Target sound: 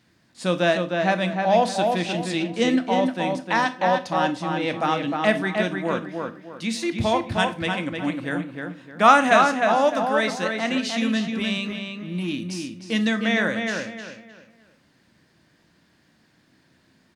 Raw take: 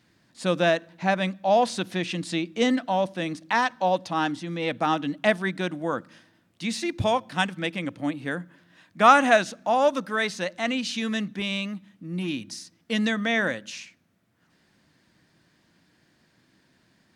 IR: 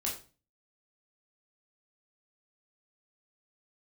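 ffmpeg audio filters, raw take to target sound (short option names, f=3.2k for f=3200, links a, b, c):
-filter_complex "[0:a]asplit=2[a][b];[b]adelay=307,lowpass=f=3.1k:p=1,volume=-4dB,asplit=2[c][d];[d]adelay=307,lowpass=f=3.1k:p=1,volume=0.32,asplit=2[e][f];[f]adelay=307,lowpass=f=3.1k:p=1,volume=0.32,asplit=2[g][h];[h]adelay=307,lowpass=f=3.1k:p=1,volume=0.32[i];[a][c][e][g][i]amix=inputs=5:normalize=0,asplit=2[j][k];[1:a]atrim=start_sample=2205[l];[k][l]afir=irnorm=-1:irlink=0,volume=-9.5dB[m];[j][m]amix=inputs=2:normalize=0,volume=-1dB"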